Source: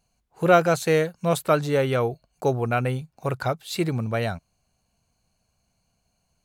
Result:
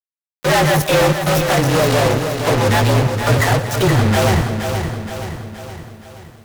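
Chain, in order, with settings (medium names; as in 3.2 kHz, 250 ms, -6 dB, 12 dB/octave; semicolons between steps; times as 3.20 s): frequency axis rescaled in octaves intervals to 115%; treble shelf 2.7 kHz -4 dB; in parallel at +1 dB: level held to a coarse grid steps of 19 dB; 1.10–2.59 s: on the sum: valve stage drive 24 dB, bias 0.75; phase dispersion lows, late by 51 ms, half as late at 620 Hz; fuzz box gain 41 dB, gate -34 dBFS; on a send: two-band feedback delay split 670 Hz, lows 339 ms, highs 114 ms, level -14 dB; on the sum: bit-crushed delay 472 ms, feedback 55%, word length 8-bit, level -7 dB; trim +1 dB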